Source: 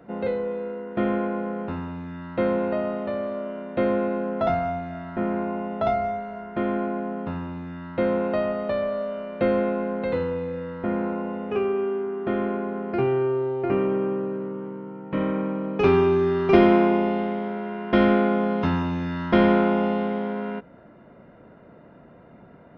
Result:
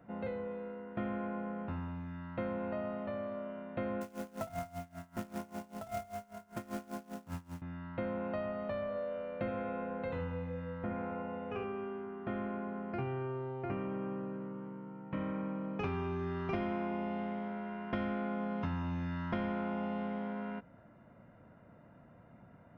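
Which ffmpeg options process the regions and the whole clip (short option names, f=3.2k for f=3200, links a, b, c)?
-filter_complex "[0:a]asettb=1/sr,asplit=3[a][b][c];[a]atrim=end=4.014[d];[b]atrim=start=4.01:end=7.62,asetpts=PTS-STARTPTS,afade=t=in:d=0.004:c=qsin,afade=t=out:st=3.606:d=0.004:c=qsin,acrusher=bits=3:mode=log:mix=0:aa=0.000001,aeval=exprs='val(0)*pow(10,-22*(0.5-0.5*cos(2*PI*5.1*n/s))/20)':c=same[e];[c]atrim=start=7.616[f];[d][e]acrossfade=d=0.004:c1=hsin:c2=qsin[g];[g][f]acrossfade=d=0.004:c1=qsin:c2=hsin,asettb=1/sr,asplit=3[h][i][j];[h]atrim=end=8.894[k];[i]atrim=start=8.89:end=11.64,asetpts=PTS-STARTPTS,afade=t=in:d=0.004:c=qsin,afade=t=out:st=2.746:d=0.004:c=qsin,aeval=exprs='val(0)+0.02*sin(2*PI*500*n/s)':c=same,aecho=1:1:70:0.376,atrim=end_sample=121275[l];[j]atrim=start=11.636[m];[k][l]acrossfade=d=0.004:c1=hsin:c2=qsin[n];[n][m]acrossfade=d=0.004:c1=qsin:c2=hsin,equalizer=f=100:t=o:w=0.67:g=7,equalizer=f=400:t=o:w=0.67:g=-8,equalizer=f=4k:t=o:w=0.67:g=-5,acompressor=threshold=-25dB:ratio=4,volume=-8.5dB"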